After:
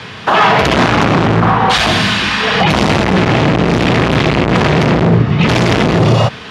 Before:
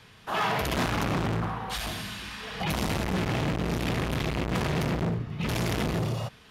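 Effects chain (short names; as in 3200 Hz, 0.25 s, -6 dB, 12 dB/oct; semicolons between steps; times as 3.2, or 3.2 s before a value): HPF 60 Hz 24 dB/oct; low shelf 90 Hz -10 dB; hard clip -20 dBFS, distortion -25 dB; air absorption 100 m; maximiser +27 dB; gain -1 dB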